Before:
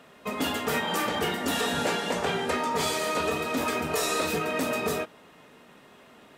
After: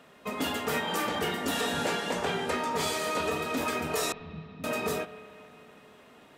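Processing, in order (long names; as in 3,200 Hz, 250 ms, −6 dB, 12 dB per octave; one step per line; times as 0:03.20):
0:04.12–0:04.64: inverse Chebyshev low-pass filter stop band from 610 Hz, stop band 60 dB
spring reverb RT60 3.2 s, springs 37/55 ms, chirp 65 ms, DRR 14 dB
level −2.5 dB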